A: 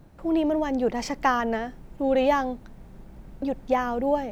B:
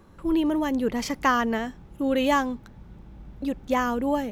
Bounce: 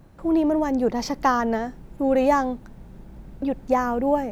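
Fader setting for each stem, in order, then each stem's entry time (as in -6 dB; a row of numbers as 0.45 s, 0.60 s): +0.5 dB, -7.5 dB; 0.00 s, 0.00 s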